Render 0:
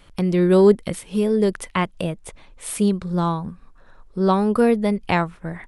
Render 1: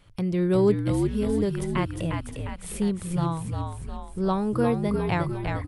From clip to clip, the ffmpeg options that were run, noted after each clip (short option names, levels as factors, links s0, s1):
-filter_complex "[0:a]equalizer=f=110:t=o:w=0.58:g=14.5,asplit=2[s0][s1];[s1]asplit=8[s2][s3][s4][s5][s6][s7][s8][s9];[s2]adelay=354,afreqshift=-59,volume=0.596[s10];[s3]adelay=708,afreqshift=-118,volume=0.339[s11];[s4]adelay=1062,afreqshift=-177,volume=0.193[s12];[s5]adelay=1416,afreqshift=-236,volume=0.111[s13];[s6]adelay=1770,afreqshift=-295,volume=0.0631[s14];[s7]adelay=2124,afreqshift=-354,volume=0.0359[s15];[s8]adelay=2478,afreqshift=-413,volume=0.0204[s16];[s9]adelay=2832,afreqshift=-472,volume=0.0116[s17];[s10][s11][s12][s13][s14][s15][s16][s17]amix=inputs=8:normalize=0[s18];[s0][s18]amix=inputs=2:normalize=0,volume=0.398"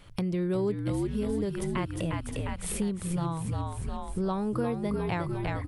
-af "bandreject=f=50:t=h:w=6,bandreject=f=100:t=h:w=6,bandreject=f=150:t=h:w=6,acompressor=threshold=0.0178:ratio=3,volume=1.78"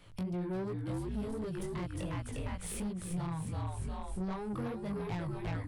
-filter_complex "[0:a]flanger=delay=17:depth=4.9:speed=2.7,acrossover=split=140[s0][s1];[s1]asoftclip=type=tanh:threshold=0.0188[s2];[s0][s2]amix=inputs=2:normalize=0,volume=0.891"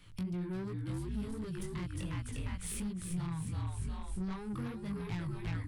-af "equalizer=f=610:t=o:w=1.3:g=-12.5,volume=1.12"